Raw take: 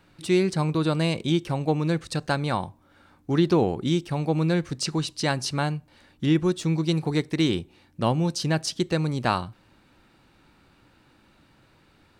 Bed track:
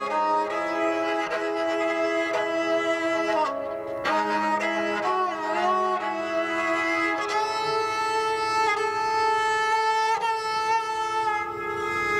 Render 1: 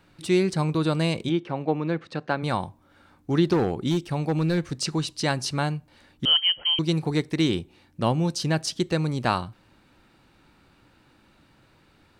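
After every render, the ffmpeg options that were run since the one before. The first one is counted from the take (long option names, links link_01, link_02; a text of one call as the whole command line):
ffmpeg -i in.wav -filter_complex "[0:a]asplit=3[link_01][link_02][link_03];[link_01]afade=type=out:start_time=1.28:duration=0.02[link_04];[link_02]highpass=190,lowpass=2600,afade=type=in:start_time=1.28:duration=0.02,afade=type=out:start_time=2.42:duration=0.02[link_05];[link_03]afade=type=in:start_time=2.42:duration=0.02[link_06];[link_04][link_05][link_06]amix=inputs=3:normalize=0,asettb=1/sr,asplit=3[link_07][link_08][link_09];[link_07]atrim=end=3.534[link_10];[link_08]atrim=start=3.53:end=4.58,asetpts=PTS-STARTPTS,afade=type=in:duration=0.004:curve=qsin,afade=type=out:start_time=1.046:duration=0.004:curve=qsin,asoftclip=type=hard:threshold=-17.5dB[link_11];[link_09]atrim=start=4.576[link_12];[link_10][link_11]acrossfade=duration=0.004:curve1=hsin:curve2=qsin[link_13];[link_13][link_12]acrossfade=duration=0.004:curve1=qsin:curve2=hsin,asettb=1/sr,asplit=3[link_14][link_15][link_16];[link_14]atrim=end=6.254[link_17];[link_15]atrim=start=6.25:end=6.79,asetpts=PTS-STARTPTS,afade=type=in:duration=0.004:curve=qsin,afade=type=out:start_time=0.536:duration=0.004:curve=qsin,lowpass=frequency=2800:width_type=q:width=0.5098,lowpass=frequency=2800:width_type=q:width=0.6013,lowpass=frequency=2800:width_type=q:width=0.9,lowpass=frequency=2800:width_type=q:width=2.563,afreqshift=-3300[link_18];[link_16]atrim=start=6.786[link_19];[link_17][link_18]acrossfade=duration=0.004:curve1=hsin:curve2=qsin[link_20];[link_20][link_19]acrossfade=duration=0.004:curve1=qsin:curve2=hsin" out.wav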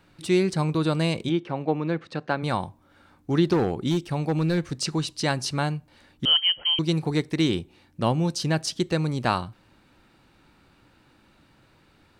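ffmpeg -i in.wav -af anull out.wav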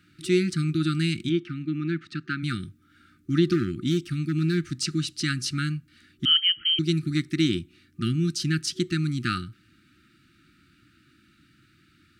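ffmpeg -i in.wav -af "highpass=68,afftfilt=real='re*(1-between(b*sr/4096,370,1200))':imag='im*(1-between(b*sr/4096,370,1200))':win_size=4096:overlap=0.75" out.wav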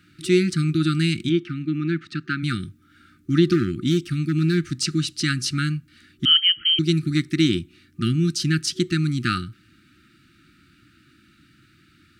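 ffmpeg -i in.wav -af "volume=4dB" out.wav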